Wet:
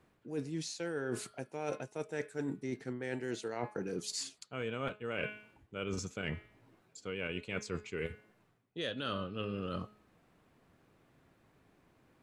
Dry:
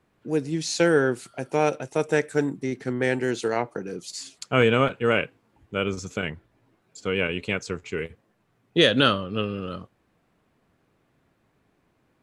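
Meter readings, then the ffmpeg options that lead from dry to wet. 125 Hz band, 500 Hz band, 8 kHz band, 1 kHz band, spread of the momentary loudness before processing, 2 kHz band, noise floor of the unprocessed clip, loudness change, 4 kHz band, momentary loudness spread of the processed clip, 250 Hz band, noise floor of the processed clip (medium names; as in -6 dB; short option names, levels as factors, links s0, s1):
-12.5 dB, -15.0 dB, -8.5 dB, -15.5 dB, 14 LU, -15.0 dB, -69 dBFS, -14.5 dB, -15.5 dB, 6 LU, -13.5 dB, -71 dBFS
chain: -af "bandreject=f=211.2:t=h:w=4,bandreject=f=422.4:t=h:w=4,bandreject=f=633.6:t=h:w=4,bandreject=f=844.8:t=h:w=4,bandreject=f=1056:t=h:w=4,bandreject=f=1267.2:t=h:w=4,bandreject=f=1478.4:t=h:w=4,bandreject=f=1689.6:t=h:w=4,bandreject=f=1900.8:t=h:w=4,bandreject=f=2112:t=h:w=4,bandreject=f=2323.2:t=h:w=4,bandreject=f=2534.4:t=h:w=4,bandreject=f=2745.6:t=h:w=4,bandreject=f=2956.8:t=h:w=4,bandreject=f=3168:t=h:w=4,bandreject=f=3379.2:t=h:w=4,bandreject=f=3590.4:t=h:w=4,bandreject=f=3801.6:t=h:w=4,bandreject=f=4012.8:t=h:w=4,bandreject=f=4224:t=h:w=4,bandreject=f=4435.2:t=h:w=4,bandreject=f=4646.4:t=h:w=4,bandreject=f=4857.6:t=h:w=4,areverse,acompressor=threshold=0.02:ratio=16,areverse"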